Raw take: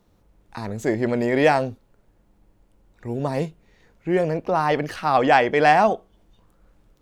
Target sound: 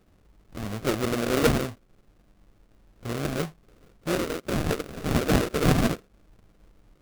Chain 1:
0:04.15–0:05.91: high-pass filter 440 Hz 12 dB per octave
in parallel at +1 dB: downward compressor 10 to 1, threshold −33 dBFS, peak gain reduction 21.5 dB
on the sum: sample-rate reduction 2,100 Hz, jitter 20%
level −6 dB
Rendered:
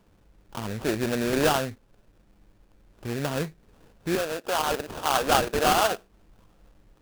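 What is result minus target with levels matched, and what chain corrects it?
sample-rate reduction: distortion −24 dB
0:04.15–0:05.91: high-pass filter 440 Hz 12 dB per octave
in parallel at +1 dB: downward compressor 10 to 1, threshold −33 dBFS, peak gain reduction 21.5 dB
on the sum: sample-rate reduction 910 Hz, jitter 20%
level −6 dB

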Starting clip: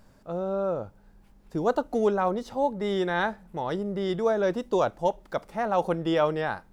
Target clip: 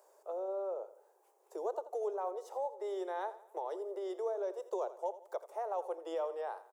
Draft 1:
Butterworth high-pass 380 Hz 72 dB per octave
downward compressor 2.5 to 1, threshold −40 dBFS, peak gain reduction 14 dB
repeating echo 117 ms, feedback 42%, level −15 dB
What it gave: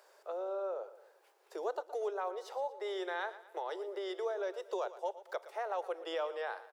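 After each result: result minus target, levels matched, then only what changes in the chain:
2,000 Hz band +11.0 dB; echo 33 ms late
add after Butterworth high-pass: flat-topped bell 2,600 Hz −12.5 dB 2.2 octaves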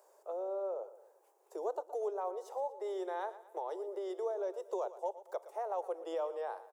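echo 33 ms late
change: repeating echo 84 ms, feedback 42%, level −15 dB

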